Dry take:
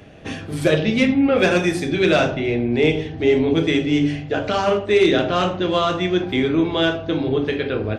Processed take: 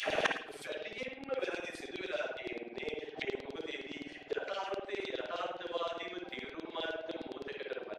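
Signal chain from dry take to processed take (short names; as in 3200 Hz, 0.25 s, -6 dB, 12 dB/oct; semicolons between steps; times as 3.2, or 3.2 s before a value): compressor 4:1, threshold -23 dBFS, peak gain reduction 10.5 dB; LFO high-pass saw down 9.7 Hz 360–4300 Hz; flipped gate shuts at -28 dBFS, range -27 dB; speakerphone echo 0.11 s, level -17 dB; on a send at -4 dB: reverb, pre-delay 52 ms; on the sum: gain +12 dB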